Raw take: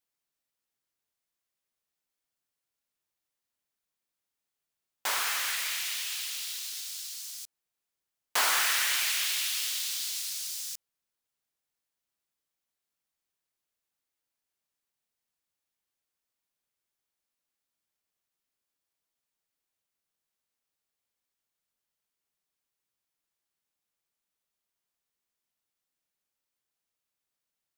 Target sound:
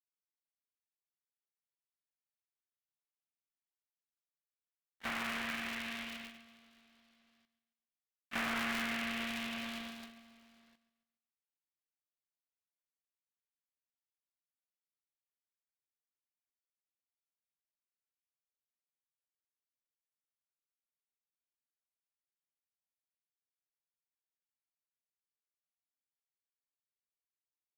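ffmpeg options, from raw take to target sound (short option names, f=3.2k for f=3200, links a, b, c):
-filter_complex "[0:a]asplit=3[a][b][c];[b]asetrate=37084,aresample=44100,atempo=1.18921,volume=-14dB[d];[c]asetrate=88200,aresample=44100,atempo=0.5,volume=-6dB[e];[a][d][e]amix=inputs=3:normalize=0,highpass=1.3k,aeval=exprs='(tanh(15.8*val(0)+0.55)-tanh(0.55))/15.8':c=same,lowpass=f=2.5k:w=0.5412,lowpass=f=2.5k:w=1.3066,agate=range=-21dB:threshold=-46dB:ratio=16:detection=peak,acompressor=threshold=-59dB:ratio=1.5,aecho=1:1:139|278|417|556:0.158|0.0697|0.0307|0.0135,aeval=exprs='val(0)*sgn(sin(2*PI*230*n/s))':c=same,volume=8dB"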